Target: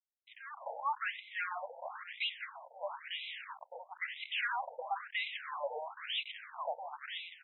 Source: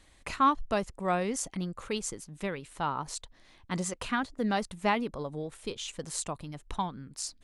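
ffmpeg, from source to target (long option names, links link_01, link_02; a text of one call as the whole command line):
ffmpeg -i in.wav -filter_complex "[0:a]aeval=exprs='val(0)+0.5*0.0126*sgn(val(0))':channel_layout=same,asettb=1/sr,asplit=3[link_01][link_02][link_03];[link_01]atrim=end=2.134[link_04];[link_02]atrim=start=2.13:end=4.47,asetpts=PTS-STARTPTS,afade=type=in:duration=0.004:curve=qsin,afade=type=out:start_time=2.336:duration=0.004:curve=qsin,bass=frequency=250:gain=-14,treble=frequency=4000:gain=6[link_05];[link_03]atrim=start=4.466[link_06];[link_04][link_05]acrossfade=duration=0.004:curve1=hsin:curve2=qsin[link_07];[link_07][link_06]acrossfade=duration=0.004:curve1=qsin:curve2=hsin,agate=range=-27dB:threshold=-36dB:ratio=16:detection=peak,bandreject=frequency=1200:width=7.1,acrossover=split=380|1300[link_08][link_09][link_10];[link_10]adelay=300[link_11];[link_09]adelay=390[link_12];[link_08][link_12][link_11]amix=inputs=3:normalize=0,asoftclip=type=tanh:threshold=-29.5dB,acrusher=bits=10:mix=0:aa=0.000001,aeval=exprs='0.0335*(cos(1*acos(clip(val(0)/0.0335,-1,1)))-cos(1*PI/2))+0.00422*(cos(8*acos(clip(val(0)/0.0335,-1,1)))-cos(8*PI/2))':channel_layout=same,lowshelf=frequency=480:gain=-5,asplit=2[link_13][link_14];[link_14]highpass=frequency=720:poles=1,volume=24dB,asoftclip=type=tanh:threshold=-27.5dB[link_15];[link_13][link_15]amix=inputs=2:normalize=0,lowpass=frequency=5100:poles=1,volume=-6dB,afftfilt=real='re*between(b*sr/1024,650*pow(2900/650,0.5+0.5*sin(2*PI*1*pts/sr))/1.41,650*pow(2900/650,0.5+0.5*sin(2*PI*1*pts/sr))*1.41)':imag='im*between(b*sr/1024,650*pow(2900/650,0.5+0.5*sin(2*PI*1*pts/sr))/1.41,650*pow(2900/650,0.5+0.5*sin(2*PI*1*pts/sr))*1.41)':win_size=1024:overlap=0.75,volume=1.5dB" out.wav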